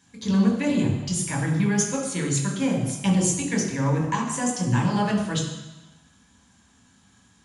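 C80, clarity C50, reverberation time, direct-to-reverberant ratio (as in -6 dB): 6.5 dB, 4.0 dB, 1.0 s, -1.5 dB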